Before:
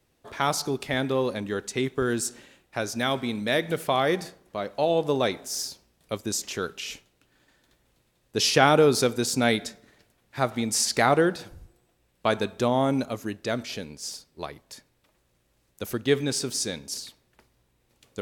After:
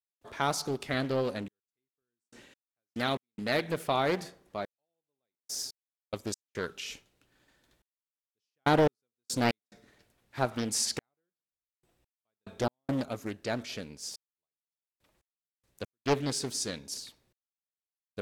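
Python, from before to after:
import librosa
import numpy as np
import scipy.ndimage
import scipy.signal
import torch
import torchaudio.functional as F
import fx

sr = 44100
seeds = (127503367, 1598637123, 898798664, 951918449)

y = fx.step_gate(x, sr, bpm=71, pattern='.xxxxxx....x..x', floor_db=-60.0, edge_ms=4.5)
y = fx.doppler_dist(y, sr, depth_ms=0.63)
y = F.gain(torch.from_numpy(y), -4.5).numpy()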